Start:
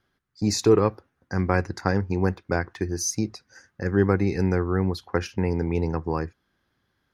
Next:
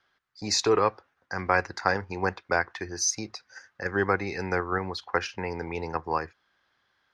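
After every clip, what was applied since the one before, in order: three-band isolator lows -16 dB, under 560 Hz, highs -23 dB, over 6.7 kHz; in parallel at -3 dB: level held to a coarse grid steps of 16 dB; on the sum: trim +1.5 dB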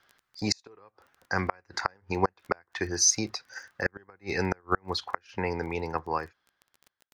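fade out at the end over 2.12 s; crackle 19 per s -44 dBFS; inverted gate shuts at -15 dBFS, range -36 dB; trim +4.5 dB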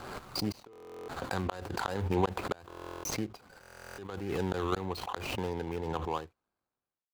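median filter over 25 samples; buffer glitch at 0.71/2.68/3.61 s, samples 1024, times 15; swell ahead of each attack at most 33 dB/s; trim -3.5 dB

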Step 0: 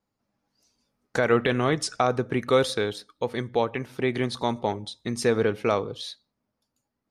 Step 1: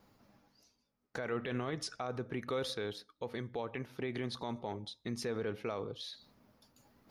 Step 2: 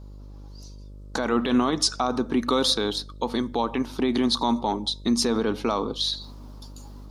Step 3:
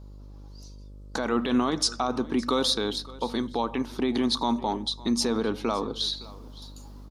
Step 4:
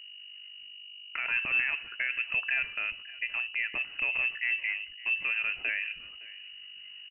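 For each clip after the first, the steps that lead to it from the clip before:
reverse; upward compressor, threshold -38 dBFS; reverse; peaking EQ 8.2 kHz -9.5 dB 0.47 oct; peak limiter -19.5 dBFS, peak gain reduction 11 dB; trim -8 dB
graphic EQ 125/250/500/1000/2000/4000/8000 Hz -11/+12/-4/+11/-8/+9/+9 dB; level rider gain up to 12 dB; mains buzz 50 Hz, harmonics 12, -40 dBFS -8 dB/octave; trim -2 dB
delay 564 ms -20.5 dB; trim -2.5 dB
frequency inversion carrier 2.9 kHz; trim -4.5 dB

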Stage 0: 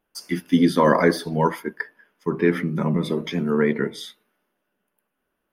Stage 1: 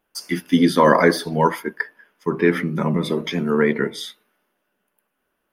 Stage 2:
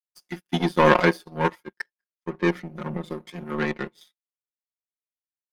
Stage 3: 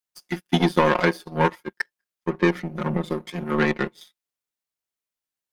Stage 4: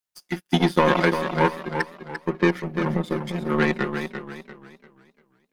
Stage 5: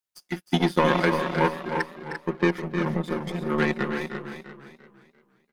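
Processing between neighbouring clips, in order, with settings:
bass shelf 400 Hz -4.5 dB; trim +4.5 dB
power-law waveshaper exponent 2; comb 5.6 ms, depth 82%
compression 12:1, threshold -19 dBFS, peak gain reduction 11 dB; trim +6 dB
modulated delay 345 ms, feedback 35%, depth 62 cents, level -8 dB
delay 309 ms -9.5 dB; trim -2.5 dB

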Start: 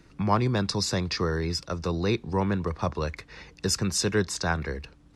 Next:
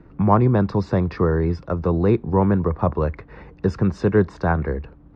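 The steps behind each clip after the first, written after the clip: low-pass 1.1 kHz 12 dB/octave; trim +8.5 dB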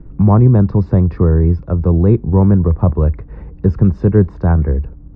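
tilt EQ -4 dB/octave; trim -2.5 dB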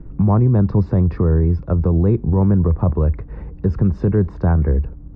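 peak limiter -8.5 dBFS, peak gain reduction 7 dB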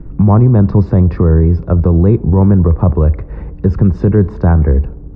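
tape echo 67 ms, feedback 83%, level -19 dB, low-pass 1.4 kHz; trim +6 dB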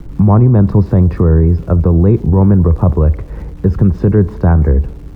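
small samples zeroed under -40 dBFS

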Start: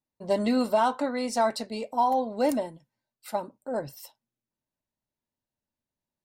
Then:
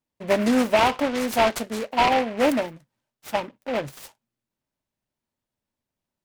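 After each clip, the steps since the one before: delay time shaken by noise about 1.5 kHz, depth 0.091 ms; trim +4.5 dB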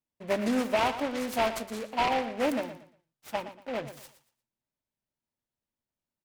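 feedback delay 117 ms, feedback 26%, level -12.5 dB; trim -7.5 dB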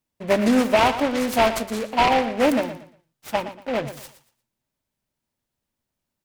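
bass shelf 170 Hz +3.5 dB; trim +8.5 dB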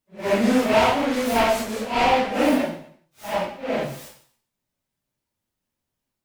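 phase randomisation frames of 200 ms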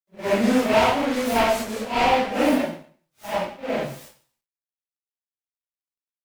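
companding laws mixed up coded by A

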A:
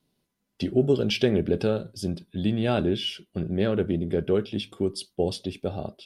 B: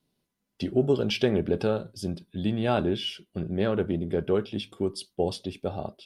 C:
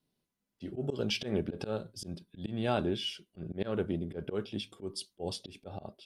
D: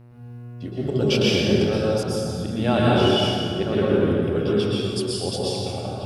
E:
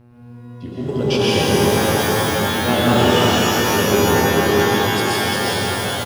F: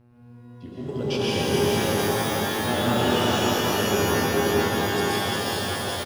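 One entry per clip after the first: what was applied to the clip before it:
dynamic bell 970 Hz, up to +7 dB, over -41 dBFS, Q 1.3; trim -2.5 dB
slow attack 104 ms; dynamic bell 7 kHz, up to +5 dB, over -52 dBFS, Q 0.73; trim -5.5 dB
mains buzz 120 Hz, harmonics 24, -54 dBFS -9 dB/octave; plate-style reverb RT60 2.4 s, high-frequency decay 0.65×, pre-delay 105 ms, DRR -6.5 dB; trim +7 dB
doubling 12 ms -11.5 dB; pitch-shifted reverb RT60 3.4 s, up +12 st, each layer -2 dB, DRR 0.5 dB
delay 428 ms -4 dB; trim -8 dB

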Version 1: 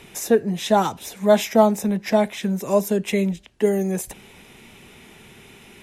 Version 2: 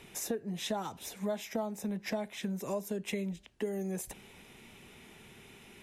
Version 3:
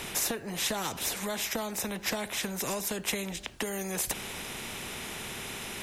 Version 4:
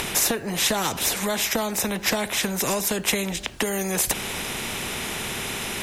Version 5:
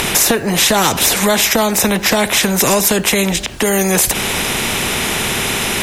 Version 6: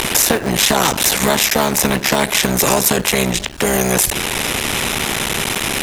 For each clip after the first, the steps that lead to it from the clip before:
compression 6:1, threshold -24 dBFS, peak gain reduction 14 dB; trim -8 dB
spectrum-flattening compressor 2:1; trim +6.5 dB
upward compressor, threshold -35 dBFS; trim +8.5 dB
loudness maximiser +13 dB; trim -1 dB
cycle switcher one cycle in 3, muted

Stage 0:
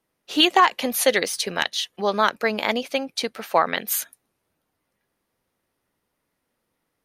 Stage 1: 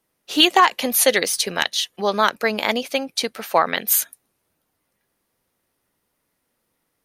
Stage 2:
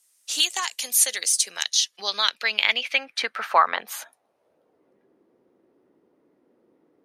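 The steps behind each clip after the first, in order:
treble shelf 5.6 kHz +6.5 dB; trim +1.5 dB
band-pass sweep 7.7 kHz -> 350 Hz, 1.48–4.99 s; three bands compressed up and down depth 40%; trim +7.5 dB

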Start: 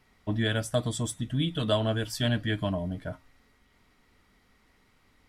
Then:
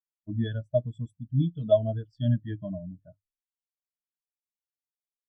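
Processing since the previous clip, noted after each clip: low-pass 8.3 kHz; hum notches 50/100 Hz; spectral contrast expander 2.5:1; trim +2.5 dB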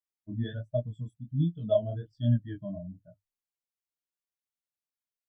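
chorus 1.3 Hz, delay 17 ms, depth 7.9 ms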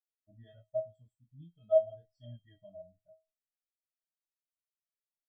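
feedback comb 640 Hz, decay 0.25 s, harmonics all, mix 100%; trim +5 dB

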